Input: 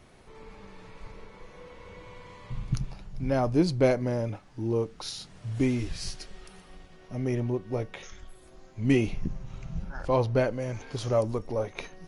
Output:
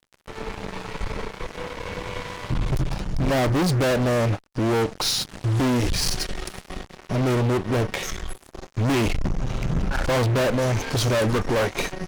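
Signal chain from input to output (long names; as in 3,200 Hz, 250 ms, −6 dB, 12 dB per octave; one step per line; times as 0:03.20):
0:11.19–0:11.67: parametric band 1,400 Hz +11 dB 0.82 octaves
fuzz pedal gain 39 dB, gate −48 dBFS
every ending faded ahead of time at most 470 dB per second
level −6 dB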